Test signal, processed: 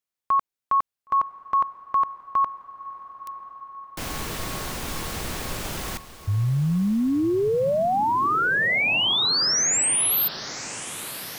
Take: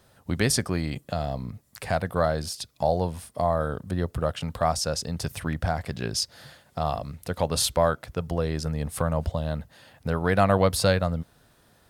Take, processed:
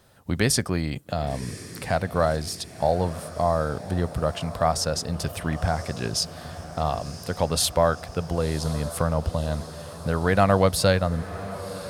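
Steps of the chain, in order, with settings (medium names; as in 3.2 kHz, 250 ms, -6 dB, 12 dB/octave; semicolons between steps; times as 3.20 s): echo that smears into a reverb 1039 ms, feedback 63%, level -14.5 dB; trim +1.5 dB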